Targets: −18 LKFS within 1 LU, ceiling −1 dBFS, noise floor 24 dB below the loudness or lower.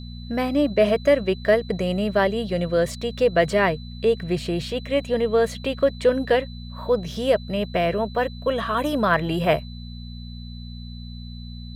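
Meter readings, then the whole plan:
mains hum 60 Hz; hum harmonics up to 240 Hz; level of the hum −34 dBFS; interfering tone 4,000 Hz; level of the tone −45 dBFS; integrated loudness −22.5 LKFS; sample peak −7.0 dBFS; target loudness −18.0 LKFS
→ hum removal 60 Hz, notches 4
notch filter 4,000 Hz, Q 30
level +4.5 dB

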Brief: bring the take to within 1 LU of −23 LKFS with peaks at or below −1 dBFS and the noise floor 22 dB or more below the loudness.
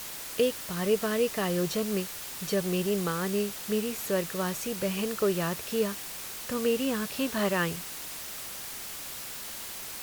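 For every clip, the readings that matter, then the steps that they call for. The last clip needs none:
background noise floor −40 dBFS; target noise floor −53 dBFS; integrated loudness −30.5 LKFS; sample peak −14.0 dBFS; target loudness −23.0 LKFS
→ broadband denoise 13 dB, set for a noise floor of −40 dBFS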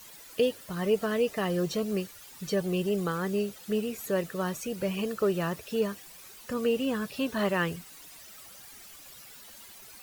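background noise floor −50 dBFS; target noise floor −52 dBFS
→ broadband denoise 6 dB, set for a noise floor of −50 dBFS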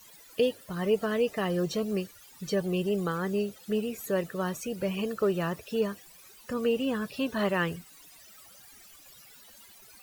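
background noise floor −54 dBFS; integrated loudness −30.0 LKFS; sample peak −15.0 dBFS; target loudness −23.0 LKFS
→ level +7 dB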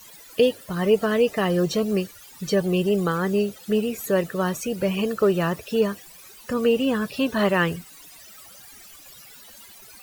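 integrated loudness −23.0 LKFS; sample peak −8.0 dBFS; background noise floor −47 dBFS

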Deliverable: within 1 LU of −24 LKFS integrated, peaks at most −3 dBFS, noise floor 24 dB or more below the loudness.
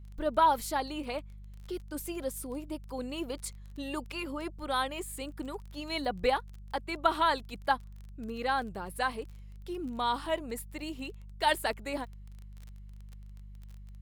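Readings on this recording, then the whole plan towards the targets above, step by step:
crackle rate 24 per second; mains hum 50 Hz; hum harmonics up to 200 Hz; level of the hum −44 dBFS; integrated loudness −33.5 LKFS; sample peak −10.0 dBFS; target loudness −24.0 LKFS
→ click removal
hum removal 50 Hz, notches 4
level +9.5 dB
brickwall limiter −3 dBFS

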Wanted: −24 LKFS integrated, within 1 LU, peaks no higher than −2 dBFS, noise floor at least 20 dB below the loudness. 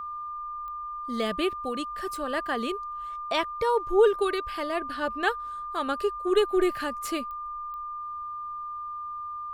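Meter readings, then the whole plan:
number of clicks 4; interfering tone 1,200 Hz; level of the tone −33 dBFS; integrated loudness −29.0 LKFS; sample peak −11.0 dBFS; target loudness −24.0 LKFS
→ click removal
notch filter 1,200 Hz, Q 30
level +5 dB

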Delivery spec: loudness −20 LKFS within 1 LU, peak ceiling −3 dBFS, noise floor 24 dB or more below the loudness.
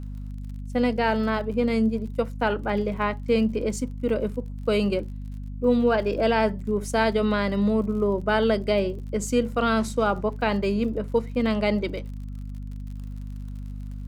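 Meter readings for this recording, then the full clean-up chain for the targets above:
crackle rate 46 per second; mains hum 50 Hz; hum harmonics up to 250 Hz; level of the hum −31 dBFS; integrated loudness −24.5 LKFS; sample peak −8.0 dBFS; target loudness −20.0 LKFS
→ click removal
mains-hum notches 50/100/150/200/250 Hz
level +4.5 dB

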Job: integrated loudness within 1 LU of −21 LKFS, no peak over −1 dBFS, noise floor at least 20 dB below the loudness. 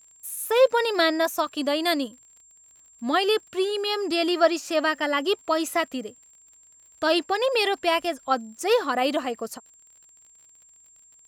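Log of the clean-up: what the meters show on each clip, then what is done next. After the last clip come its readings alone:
crackle rate 36 per second; interfering tone 7,400 Hz; level of the tone −52 dBFS; integrated loudness −24.0 LKFS; sample peak −6.5 dBFS; target loudness −21.0 LKFS
→ click removal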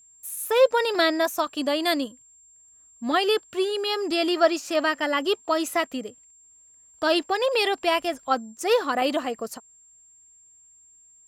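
crackle rate 0.89 per second; interfering tone 7,400 Hz; level of the tone −52 dBFS
→ notch filter 7,400 Hz, Q 30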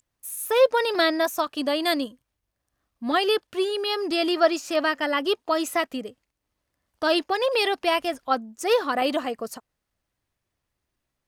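interfering tone none found; integrated loudness −24.0 LKFS; sample peak −6.5 dBFS; target loudness −21.0 LKFS
→ level +3 dB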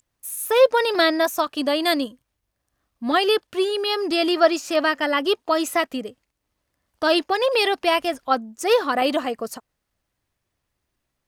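integrated loudness −21.0 LKFS; sample peak −3.5 dBFS; background noise floor −79 dBFS

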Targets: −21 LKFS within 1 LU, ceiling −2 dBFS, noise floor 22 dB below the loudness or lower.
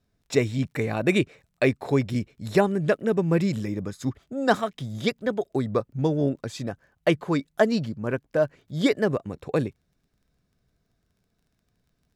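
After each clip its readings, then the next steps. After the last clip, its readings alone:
crackle rate 17 per second; integrated loudness −26.0 LKFS; sample peak −6.5 dBFS; target loudness −21.0 LKFS
→ click removal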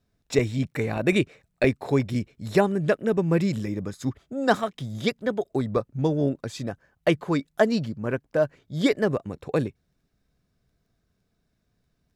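crackle rate 0.25 per second; integrated loudness −26.0 LKFS; sample peak −4.5 dBFS; target loudness −21.0 LKFS
→ level +5 dB
brickwall limiter −2 dBFS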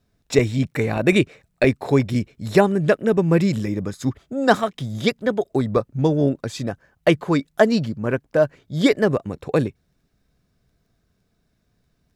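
integrated loudness −21.0 LKFS; sample peak −2.0 dBFS; background noise floor −69 dBFS

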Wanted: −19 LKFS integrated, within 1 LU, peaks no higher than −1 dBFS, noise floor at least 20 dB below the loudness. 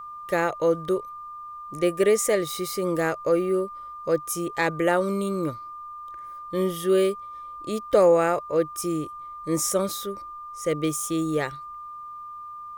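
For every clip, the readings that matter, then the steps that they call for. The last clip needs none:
interfering tone 1,200 Hz; level of the tone −36 dBFS; integrated loudness −25.0 LKFS; sample peak −7.5 dBFS; target loudness −19.0 LKFS
→ notch filter 1,200 Hz, Q 30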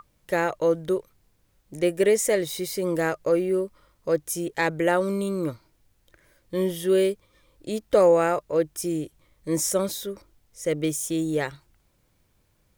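interfering tone none found; integrated loudness −25.0 LKFS; sample peak −7.5 dBFS; target loudness −19.0 LKFS
→ level +6 dB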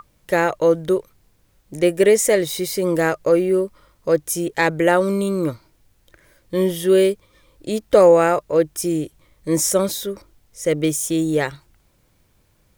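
integrated loudness −19.0 LKFS; sample peak −1.5 dBFS; background noise floor −61 dBFS

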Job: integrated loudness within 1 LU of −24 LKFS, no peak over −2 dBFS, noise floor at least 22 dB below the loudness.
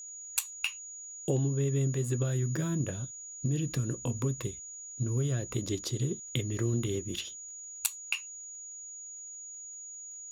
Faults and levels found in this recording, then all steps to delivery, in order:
crackle rate 20 per second; interfering tone 6,800 Hz; level of the tone −42 dBFS; integrated loudness −33.5 LKFS; sample peak −12.0 dBFS; target loudness −24.0 LKFS
→ click removal
notch filter 6,800 Hz, Q 30
level +9.5 dB

